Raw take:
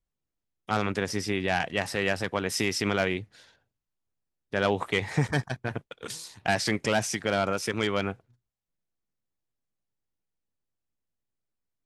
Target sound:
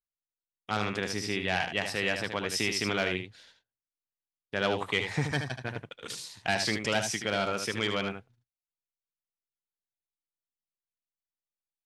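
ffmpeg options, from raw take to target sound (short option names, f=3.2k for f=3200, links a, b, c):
-af "agate=range=-16dB:threshold=-58dB:ratio=16:detection=peak,equalizer=f=3.4k:t=o:w=1.8:g=6,aecho=1:1:76:0.447,volume=-5dB"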